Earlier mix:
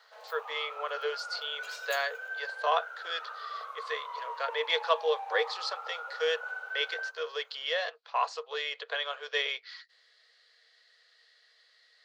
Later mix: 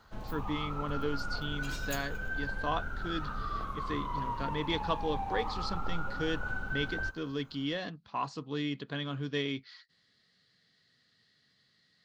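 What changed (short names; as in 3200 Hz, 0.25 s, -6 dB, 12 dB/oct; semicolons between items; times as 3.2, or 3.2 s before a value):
speech -8.0 dB; master: remove rippled Chebyshev high-pass 450 Hz, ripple 3 dB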